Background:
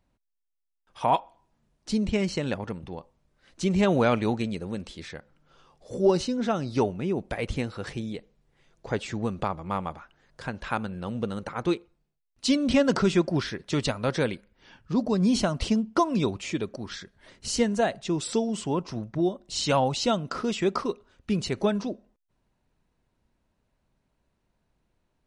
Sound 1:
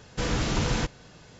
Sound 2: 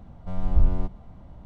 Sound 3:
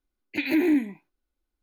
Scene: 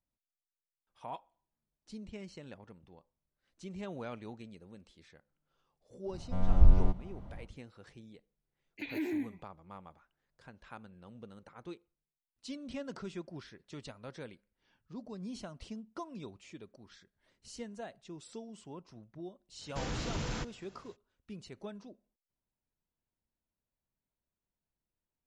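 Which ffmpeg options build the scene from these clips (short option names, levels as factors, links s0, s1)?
-filter_complex "[0:a]volume=0.1[s0];[1:a]asoftclip=type=tanh:threshold=0.178[s1];[2:a]atrim=end=1.45,asetpts=PTS-STARTPTS,volume=0.841,afade=t=in:d=0.1,afade=t=out:st=1.35:d=0.1,adelay=6050[s2];[3:a]atrim=end=1.62,asetpts=PTS-STARTPTS,volume=0.211,afade=t=in:d=0.004:c=hsin,afade=t=out:st=1.616:d=0.004:c=hsin,adelay=8440[s3];[s1]atrim=end=1.39,asetpts=PTS-STARTPTS,volume=0.316,afade=t=in:d=0.05,afade=t=out:st=1.34:d=0.05,adelay=19580[s4];[s0][s2][s3][s4]amix=inputs=4:normalize=0"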